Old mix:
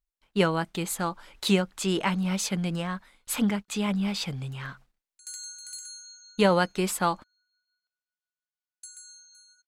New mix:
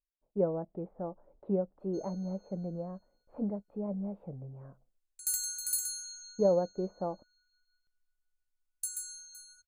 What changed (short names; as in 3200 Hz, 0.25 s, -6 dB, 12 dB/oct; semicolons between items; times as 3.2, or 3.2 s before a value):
speech: add ladder low-pass 670 Hz, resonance 55%; background: remove BPF 770–6100 Hz